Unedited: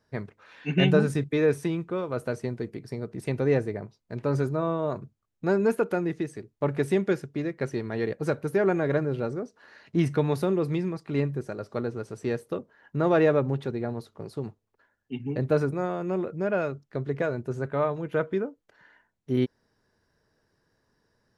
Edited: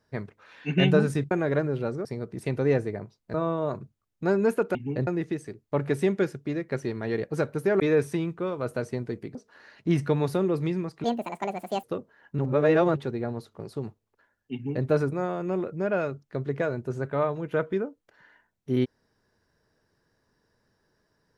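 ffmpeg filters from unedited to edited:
-filter_complex "[0:a]asplit=12[a][b][c][d][e][f][g][h][i][j][k][l];[a]atrim=end=1.312[m];[b]atrim=start=8.688:end=9.432[n];[c]atrim=start=2.858:end=4.152[o];[d]atrim=start=4.548:end=5.962[p];[e]atrim=start=15.148:end=15.472[q];[f]atrim=start=5.958:end=8.692[r];[g]atrim=start=1.308:end=2.862[s];[h]atrim=start=9.428:end=11.124[t];[i]atrim=start=11.12:end=12.44,asetpts=PTS-STARTPTS,asetrate=73206,aresample=44100,atrim=end_sample=35067,asetpts=PTS-STARTPTS[u];[j]atrim=start=12.436:end=12.992[v];[k]atrim=start=12.988:end=13.562,asetpts=PTS-STARTPTS,areverse[w];[l]atrim=start=13.558[x];[m][n]acrossfade=d=0.004:c1=hsin:c2=hsin[y];[y][o]acrossfade=d=0.004:c1=hsin:c2=hsin[z];[z][p]acrossfade=d=0.004:c1=hsin:c2=hsin[aa];[aa][q]acrossfade=d=0.004:c1=hsin:c2=hsin[ab];[ab][r]acrossfade=d=0.004:c1=hsin:c2=hsin[ac];[ac][s]acrossfade=d=0.004:c1=hsin:c2=hsin[ad];[ad][t]acrossfade=d=0.004:c1=hsin:c2=hsin[ae];[ae][u]acrossfade=d=0.004:c1=hsin:c2=hsin[af];[af][v]acrossfade=d=0.004:c1=hsin:c2=hsin[ag];[ag][w]acrossfade=d=0.004:c1=hsin:c2=hsin[ah];[ah][x]acrossfade=d=0.004:c1=hsin:c2=hsin"

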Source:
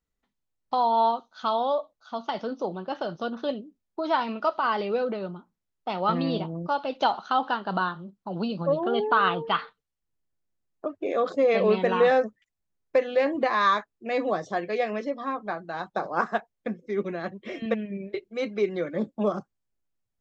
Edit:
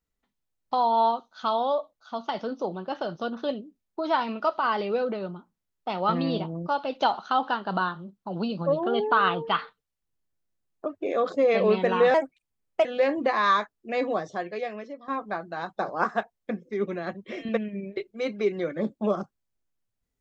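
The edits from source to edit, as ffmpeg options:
-filter_complex "[0:a]asplit=4[a][b][c][d];[a]atrim=end=12.144[e];[b]atrim=start=12.14:end=13.02,asetpts=PTS-STARTPTS,asetrate=54684,aresample=44100[f];[c]atrim=start=13.016:end=15.25,asetpts=PTS-STARTPTS,afade=t=out:st=1.134:d=1.1:silence=0.223872[g];[d]atrim=start=15.25,asetpts=PTS-STARTPTS,afade=t=in:d=0.004:c=hsin:silence=0.223872[h];[e][f]acrossfade=d=0.004:c1=hsin:c2=hsin[i];[g][h]concat=n=2:v=0:a=1[j];[i][j]acrossfade=d=0.004:c1=hsin:c2=hsin"

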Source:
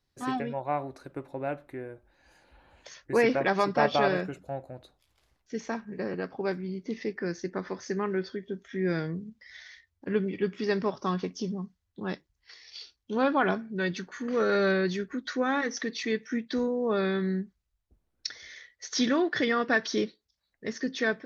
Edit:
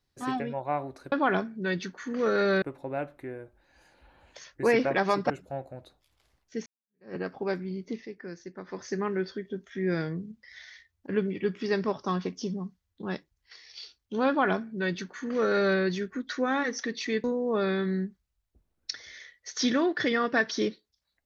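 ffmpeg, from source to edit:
-filter_complex "[0:a]asplit=8[a][b][c][d][e][f][g][h];[a]atrim=end=1.122[i];[b]atrim=start=13.258:end=14.762[j];[c]atrim=start=1.118:end=3.802[k];[d]atrim=start=4.278:end=5.64,asetpts=PTS-STARTPTS,afade=t=out:st=1.358:d=0.004:c=hsin[l];[e]atrim=start=5.64:end=7.02,asetpts=PTS-STARTPTS,afade=t=in:d=0.49:c=exp,afade=t=out:st=1.24:d=0.14:silence=0.375837[m];[f]atrim=start=7.02:end=7.64,asetpts=PTS-STARTPTS,volume=-8.5dB[n];[g]atrim=start=7.64:end=16.222,asetpts=PTS-STARTPTS,afade=t=in:d=0.14:silence=0.375837[o];[h]atrim=start=16.598[p];[i][j]acrossfade=d=0.004:c1=hsin:c2=hsin[q];[q][k]acrossfade=d=0.004:c1=hsin:c2=hsin[r];[l][m][n][o]concat=n=4:v=0:a=1[s];[r][s]acrossfade=d=0.004:c1=hsin:c2=hsin[t];[t][p]acrossfade=d=0.004:c1=hsin:c2=hsin"

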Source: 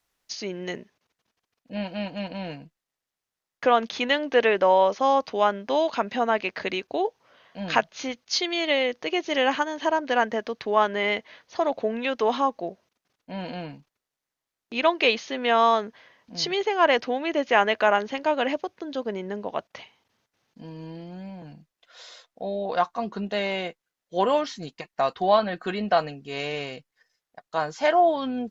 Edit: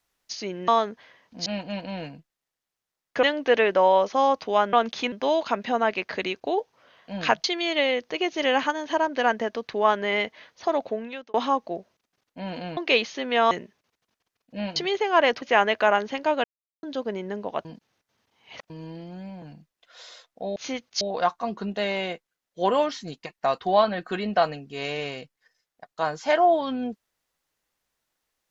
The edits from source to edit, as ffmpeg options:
-filter_complex "[0:a]asplit=18[a][b][c][d][e][f][g][h][i][j][k][l][m][n][o][p][q][r];[a]atrim=end=0.682[s];[b]atrim=start=15.638:end=16.422[t];[c]atrim=start=1.928:end=3.702[u];[d]atrim=start=4.088:end=5.592[v];[e]atrim=start=3.698:end=4.092[w];[f]atrim=start=5.588:end=7.912[x];[g]atrim=start=8.358:end=12.26,asetpts=PTS-STARTPTS,afade=t=out:st=3.332:d=0.57[y];[h]atrim=start=12.26:end=13.692,asetpts=PTS-STARTPTS,afade=t=in:d=0.004:c=hsin[z];[i]atrim=start=14.898:end=15.642[aa];[j]atrim=start=0.678:end=1.932[ab];[k]atrim=start=16.418:end=17.082[ac];[l]atrim=start=17.418:end=18.44,asetpts=PTS-STARTPTS,afade=t=out:st=1.018:d=0.004:c=hsin[ad];[m]atrim=start=18.44:end=18.83,asetpts=PTS-STARTPTS,volume=0[ae];[n]atrim=start=18.83:end=19.652,asetpts=PTS-STARTPTS,afade=t=in:d=0.004:c=hsin[af];[o]atrim=start=19.648:end=20.702,asetpts=PTS-STARTPTS,areverse[ag];[p]atrim=start=20.698:end=22.562[ah];[q]atrim=start=7.908:end=8.362[ai];[r]atrim=start=22.558[aj];[s][t]acrossfade=d=0.004:c1=hsin:c2=hsin[ak];[ak][u]acrossfade=d=0.004:c1=hsin:c2=hsin[al];[al][v]acrossfade=d=0.004:c1=hsin:c2=hsin[am];[am][w]acrossfade=d=0.004:c1=hsin:c2=hsin[an];[an][x]acrossfade=d=0.004:c1=hsin:c2=hsin[ao];[y][z]concat=n=2:v=0:a=1[ap];[ao][ap]acrossfade=d=0.004:c1=hsin:c2=hsin[aq];[aq][aa]acrossfade=d=0.004:c1=hsin:c2=hsin[ar];[ar][ab]acrossfade=d=0.004:c1=hsin:c2=hsin[as];[as][ac]acrossfade=d=0.004:c1=hsin:c2=hsin[at];[ad][ae][af]concat=n=3:v=0:a=1[au];[at][au]acrossfade=d=0.004:c1=hsin:c2=hsin[av];[av][ag]acrossfade=d=0.004:c1=hsin:c2=hsin[aw];[aw][ah]acrossfade=d=0.004:c1=hsin:c2=hsin[ax];[ax][ai]acrossfade=d=0.004:c1=hsin:c2=hsin[ay];[ay][aj]acrossfade=d=0.004:c1=hsin:c2=hsin"

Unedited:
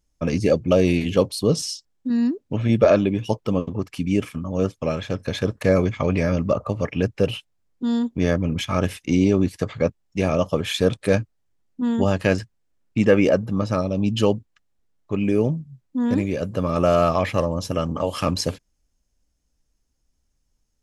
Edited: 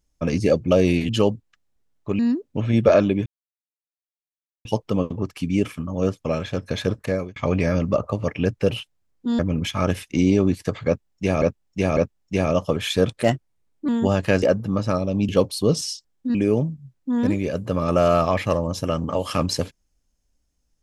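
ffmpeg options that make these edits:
-filter_complex "[0:a]asplit=13[a][b][c][d][e][f][g][h][i][j][k][l][m];[a]atrim=end=1.092[n];[b]atrim=start=14.118:end=15.222[o];[c]atrim=start=2.148:end=3.22,asetpts=PTS-STARTPTS,afade=t=out:st=1.068:d=0.004:c=hsin,apad=pad_dur=1.39[p];[d]atrim=start=3.22:end=5.93,asetpts=PTS-STARTPTS,afade=t=in:d=0.004:c=hsin,afade=t=out:st=2.26:d=0.45[q];[e]atrim=start=5.93:end=7.962,asetpts=PTS-STARTPTS,afade=t=in:d=0.004:c=hsin[r];[f]atrim=start=8.328:end=10.362[s];[g]atrim=start=9.808:end=10.362[t];[h]atrim=start=9.808:end=11.074[u];[i]atrim=start=11.07:end=11.85,asetpts=PTS-STARTPTS,asetrate=52479,aresample=44100[v];[j]atrim=start=11.846:end=12.392[w];[k]atrim=start=13.258:end=14.122[x];[l]atrim=start=1.088:end=2.152[y];[m]atrim=start=15.218[z];[n][o]acrossfade=d=0.004:c1=hsin:c2=hsin[aa];[p][q][r]concat=n=3:v=0:a=1[ab];[aa][ab]acrossfade=d=0.004:c1=hsin:c2=hsin[ac];[ac][s]acrossfade=d=0.004:c1=hsin:c2=hsin[ad];[ad][t]acrossfade=d=0.004:c1=hsin:c2=hsin[ae];[ae][u]acrossfade=d=0.004:c1=hsin:c2=hsin[af];[af][v]acrossfade=d=0.004:c1=hsin:c2=hsin[ag];[ag][w]acrossfade=d=0.004:c1=hsin:c2=hsin[ah];[ah][x]acrossfade=d=0.004:c1=hsin:c2=hsin[ai];[ai][y]acrossfade=d=0.004:c1=hsin:c2=hsin[aj];[aj][z]acrossfade=d=0.004:c1=hsin:c2=hsin"

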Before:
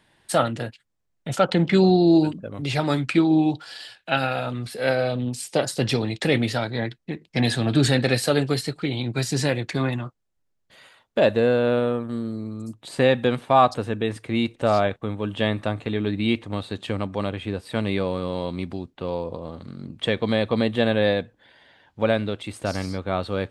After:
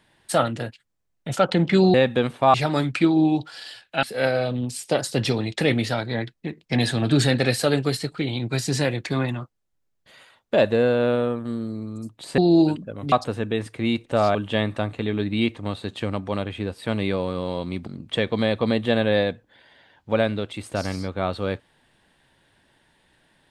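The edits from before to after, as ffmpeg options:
-filter_complex "[0:a]asplit=8[a][b][c][d][e][f][g][h];[a]atrim=end=1.942[i];[b]atrim=start=13.018:end=13.622[j];[c]atrim=start=2.678:end=4.172[k];[d]atrim=start=4.668:end=13.022[l];[e]atrim=start=1.938:end=2.682[m];[f]atrim=start=13.618:end=14.852[n];[g]atrim=start=15.218:end=18.742[o];[h]atrim=start=19.768[p];[i][j]acrossfade=d=0.004:c1=hsin:c2=hsin[q];[q][k]acrossfade=d=0.004:c1=hsin:c2=hsin[r];[r][l]acrossfade=d=0.004:c1=hsin:c2=hsin[s];[s][m]acrossfade=d=0.004:c1=hsin:c2=hsin[t];[t][n]acrossfade=d=0.004:c1=hsin:c2=hsin[u];[u][o]acrossfade=d=0.004:c1=hsin:c2=hsin[v];[v][p]acrossfade=d=0.004:c1=hsin:c2=hsin"

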